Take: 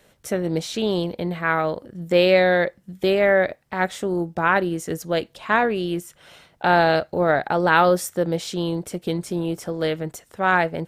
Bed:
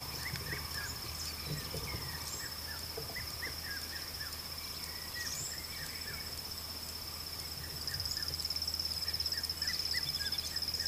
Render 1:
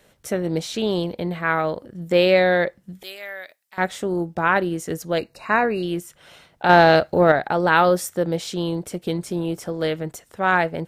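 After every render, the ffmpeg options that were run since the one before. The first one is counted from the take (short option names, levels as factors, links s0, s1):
-filter_complex "[0:a]asettb=1/sr,asplit=3[s0][s1][s2];[s0]atrim=end=3.034[s3];[s1]atrim=start=3.03:end=3.78,asetpts=PTS-STARTPTS,afade=t=in:d=0.004:c=qsin,afade=t=out:st=0.746:d=0.004:c=qsin,aderivative[s4];[s2]atrim=start=3.776[s5];[s3][s4]acrossfade=d=0.004:c1=hsin:c2=qsin[s6];[s6][s5]acrossfade=d=0.004:c1=qsin:c2=hsin,asettb=1/sr,asplit=3[s7][s8][s9];[s7]atrim=end=5.184[s10];[s8]atrim=start=5.18:end=5.83,asetpts=PTS-STARTPTS,afade=t=in:d=0.004:c=qsin,afade=t=out:st=0.646:d=0.004:c=qsin,asuperstop=centerf=3300:order=20:qfactor=3.7[s11];[s9]atrim=start=5.826[s12];[s10][s11]acrossfade=d=0.004:c1=hsin:c2=qsin[s13];[s13][s12]acrossfade=d=0.004:c1=qsin:c2=hsin,asettb=1/sr,asplit=3[s14][s15][s16];[s14]atrim=end=6.694[s17];[s15]atrim=start=6.69:end=7.32,asetpts=PTS-STARTPTS,afade=t=in:d=0.004:c=qsin,afade=t=out:st=0.626:d=0.004:c=qsin,acontrast=21[s18];[s16]atrim=start=7.316[s19];[s17][s18]acrossfade=d=0.004:c1=hsin:c2=qsin[s20];[s20][s19]acrossfade=d=0.004:c1=qsin:c2=hsin"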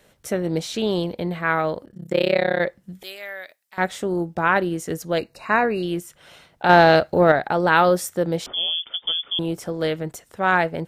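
-filter_complex "[0:a]asplit=3[s0][s1][s2];[s0]afade=t=out:st=1.84:d=0.02[s3];[s1]tremolo=f=33:d=0.974,afade=t=in:st=1.84:d=0.02,afade=t=out:st=2.59:d=0.02[s4];[s2]afade=t=in:st=2.59:d=0.02[s5];[s3][s4][s5]amix=inputs=3:normalize=0,asettb=1/sr,asplit=3[s6][s7][s8];[s6]atrim=end=8.464[s9];[s7]atrim=start=8.46:end=9.39,asetpts=PTS-STARTPTS,afade=t=in:d=0.004:c=qsin,afade=t=out:st=0.926:d=0.004:c=qsin,lowpass=f=3100:t=q:w=0.5098,lowpass=f=3100:t=q:w=0.6013,lowpass=f=3100:t=q:w=0.9,lowpass=f=3100:t=q:w=2.563,afreqshift=-3600[s10];[s8]atrim=start=9.386[s11];[s9][s10]acrossfade=d=0.004:c1=hsin:c2=qsin[s12];[s12][s11]acrossfade=d=0.004:c1=qsin:c2=hsin"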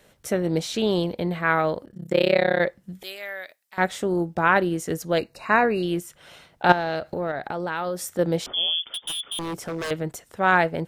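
-filter_complex "[0:a]asettb=1/sr,asplit=3[s0][s1][s2];[s0]atrim=end=6.724[s3];[s1]atrim=start=6.72:end=8.19,asetpts=PTS-STARTPTS,afade=t=in:d=0.004:c=qsin,afade=t=out:st=1.466:d=0.004:c=qsin,acompressor=threshold=0.0398:ratio=3:attack=3.2:release=140:knee=1:detection=peak[s4];[s2]atrim=start=8.186[s5];[s3][s4]acrossfade=d=0.004:c1=hsin:c2=qsin[s6];[s6][s5]acrossfade=d=0.004:c1=qsin:c2=hsin,asettb=1/sr,asplit=3[s7][s8][s9];[s7]atrim=end=8.944[s10];[s8]atrim=start=8.94:end=9.91,asetpts=PTS-STARTPTS,afade=t=in:d=0.004:c=qsin,afade=t=out:st=0.966:d=0.004:c=qsin,aeval=exprs='0.0631*(abs(mod(val(0)/0.0631+3,4)-2)-1)':c=same[s11];[s9]atrim=start=9.906[s12];[s10][s11]acrossfade=d=0.004:c1=hsin:c2=qsin[s13];[s13][s12]acrossfade=d=0.004:c1=qsin:c2=hsin"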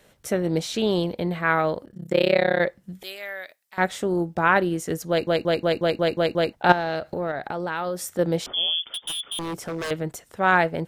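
-filter_complex "[0:a]asplit=9[s0][s1][s2][s3][s4][s5][s6][s7][s8];[s0]atrim=end=5.272[s9];[s1]atrim=start=5.088:end=5.272[s10];[s2]atrim=start=5.088:end=5.272[s11];[s3]atrim=start=5.088:end=5.272[s12];[s4]atrim=start=5.088:end=5.272[s13];[s5]atrim=start=5.088:end=5.272[s14];[s6]atrim=start=5.088:end=5.272[s15];[s7]atrim=start=5.088:end=5.272[s16];[s8]atrim=start=6.528[s17];[s9][s10]acrossfade=d=0.004:c1=hsin:c2=hsin[s18];[s18][s11]acrossfade=d=0.004:c1=hsin:c2=hsin[s19];[s19][s12]acrossfade=d=0.004:c1=hsin:c2=hsin[s20];[s20][s13]acrossfade=d=0.004:c1=hsin:c2=hsin[s21];[s21][s14]acrossfade=d=0.004:c1=hsin:c2=hsin[s22];[s22][s15]acrossfade=d=0.004:c1=hsin:c2=hsin[s23];[s23][s16]acrossfade=d=0.004:c1=hsin:c2=hsin[s24];[s24][s17]acrossfade=d=0.004:c1=hsin:c2=hsin"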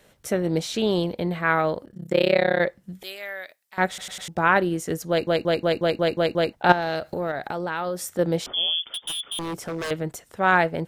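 -filter_complex "[0:a]asettb=1/sr,asplit=3[s0][s1][s2];[s0]atrim=end=6.824[s3];[s1]atrim=start=6.82:end=7.59,asetpts=PTS-STARTPTS,afade=t=in:d=0.004:c=qsin,afade=t=out:st=0.766:d=0.004:c=qsin,highshelf=f=5200:g=8[s4];[s2]atrim=start=7.586[s5];[s3][s4]acrossfade=d=0.004:c1=hsin:c2=qsin[s6];[s6][s5]acrossfade=d=0.004:c1=qsin:c2=hsin,asplit=5[s7][s8][s9][s10][s11];[s7]atrim=end=3.982[s12];[s8]atrim=start=3.878:end=3.982[s13];[s9]atrim=start=3.878:end=3.982[s14];[s10]atrim=start=3.878:end=3.982[s15];[s11]atrim=start=4.278[s16];[s12][s13]acrossfade=d=0.004:c1=hsin:c2=hsin[s17];[s17][s14]acrossfade=d=0.004:c1=hsin:c2=hsin[s18];[s18][s15]acrossfade=d=0.004:c1=hsin:c2=hsin[s19];[s19][s16]acrossfade=d=0.004:c1=hsin:c2=hsin"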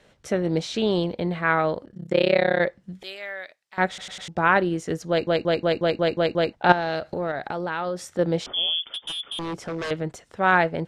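-af "lowpass=5900"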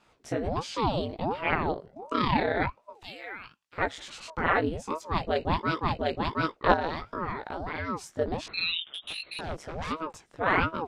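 -af "flanger=delay=16.5:depth=3:speed=1.5,aeval=exprs='val(0)*sin(2*PI*440*n/s+440*0.85/1.4*sin(2*PI*1.4*n/s))':c=same"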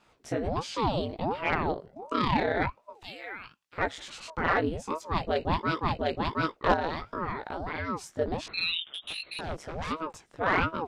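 -af "asoftclip=type=tanh:threshold=0.237"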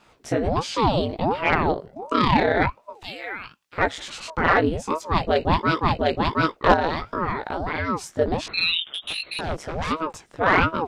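-af "volume=2.37"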